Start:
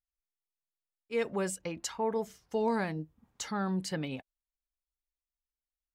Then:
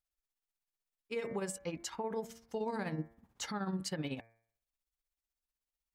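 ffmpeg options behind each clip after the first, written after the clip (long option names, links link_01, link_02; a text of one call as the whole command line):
ffmpeg -i in.wav -af "tremolo=f=16:d=0.7,bandreject=frequency=114.2:width_type=h:width=4,bandreject=frequency=228.4:width_type=h:width=4,bandreject=frequency=342.6:width_type=h:width=4,bandreject=frequency=456.8:width_type=h:width=4,bandreject=frequency=571:width_type=h:width=4,bandreject=frequency=685.2:width_type=h:width=4,bandreject=frequency=799.4:width_type=h:width=4,bandreject=frequency=913.6:width_type=h:width=4,bandreject=frequency=1027.8:width_type=h:width=4,bandreject=frequency=1142:width_type=h:width=4,bandreject=frequency=1256.2:width_type=h:width=4,bandreject=frequency=1370.4:width_type=h:width=4,bandreject=frequency=1484.6:width_type=h:width=4,bandreject=frequency=1598.8:width_type=h:width=4,bandreject=frequency=1713:width_type=h:width=4,bandreject=frequency=1827.2:width_type=h:width=4,bandreject=frequency=1941.4:width_type=h:width=4,bandreject=frequency=2055.6:width_type=h:width=4,bandreject=frequency=2169.8:width_type=h:width=4,bandreject=frequency=2284:width_type=h:width=4,bandreject=frequency=2398.2:width_type=h:width=4,alimiter=level_in=7.5dB:limit=-24dB:level=0:latency=1:release=128,volume=-7.5dB,volume=3.5dB" out.wav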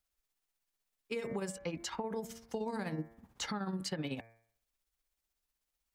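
ffmpeg -i in.wav -filter_complex "[0:a]acrossover=split=190|5500[link_01][link_02][link_03];[link_01]acompressor=threshold=-50dB:ratio=4[link_04];[link_02]acompressor=threshold=-43dB:ratio=4[link_05];[link_03]acompressor=threshold=-56dB:ratio=4[link_06];[link_04][link_05][link_06]amix=inputs=3:normalize=0,volume=6dB" out.wav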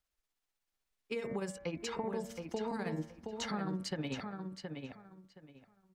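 ffmpeg -i in.wav -filter_complex "[0:a]highshelf=frequency=8200:gain=-8,asplit=2[link_01][link_02];[link_02]adelay=721,lowpass=frequency=4100:poles=1,volume=-5.5dB,asplit=2[link_03][link_04];[link_04]adelay=721,lowpass=frequency=4100:poles=1,volume=0.22,asplit=2[link_05][link_06];[link_06]adelay=721,lowpass=frequency=4100:poles=1,volume=0.22[link_07];[link_01][link_03][link_05][link_07]amix=inputs=4:normalize=0" out.wav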